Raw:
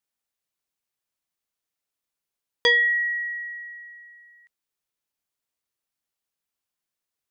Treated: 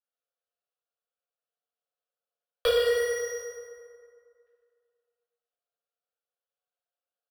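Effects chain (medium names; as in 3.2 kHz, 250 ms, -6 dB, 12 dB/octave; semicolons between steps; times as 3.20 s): Chebyshev high-pass 480 Hz, order 5; tilt EQ -4.5 dB/octave; band-stop 1.9 kHz, Q 17; comb 7.1 ms, depth 44%; compression, threshold -35 dBFS, peak gain reduction 14.5 dB; waveshaping leveller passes 5; chorus 2.2 Hz, delay 19.5 ms, depth 2.7 ms; saturation -24.5 dBFS, distortion -17 dB; static phaser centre 1.4 kHz, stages 8; FDN reverb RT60 2.2 s, low-frequency decay 0.85×, high-frequency decay 0.55×, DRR -6 dB; trim +6.5 dB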